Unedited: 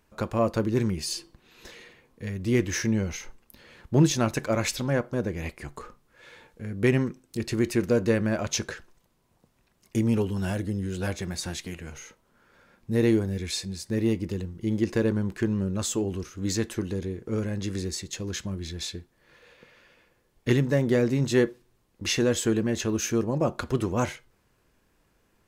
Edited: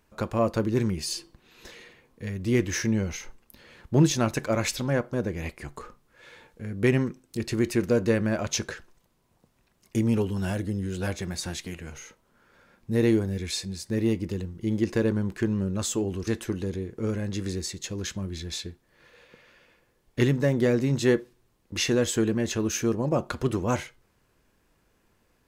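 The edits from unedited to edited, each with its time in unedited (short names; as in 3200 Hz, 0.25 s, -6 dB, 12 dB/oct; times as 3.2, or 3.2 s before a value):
16.27–16.56 cut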